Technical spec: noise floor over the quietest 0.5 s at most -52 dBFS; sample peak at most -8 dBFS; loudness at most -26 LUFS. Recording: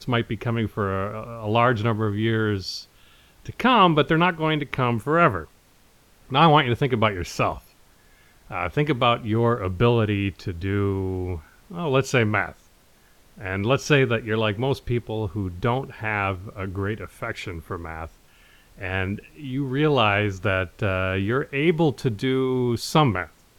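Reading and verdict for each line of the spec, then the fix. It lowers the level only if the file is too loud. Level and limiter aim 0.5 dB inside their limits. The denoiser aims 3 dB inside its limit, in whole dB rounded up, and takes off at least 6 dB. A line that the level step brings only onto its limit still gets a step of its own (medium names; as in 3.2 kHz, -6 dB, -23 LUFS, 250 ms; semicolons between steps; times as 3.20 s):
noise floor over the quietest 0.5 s -56 dBFS: pass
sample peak -3.5 dBFS: fail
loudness -23.0 LUFS: fail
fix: trim -3.5 dB; peak limiter -8.5 dBFS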